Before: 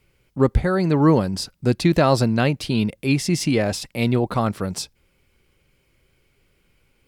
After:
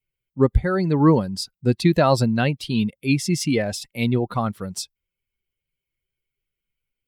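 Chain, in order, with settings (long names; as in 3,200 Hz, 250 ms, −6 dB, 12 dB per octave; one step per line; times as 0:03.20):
spectral dynamics exaggerated over time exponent 1.5
level +1.5 dB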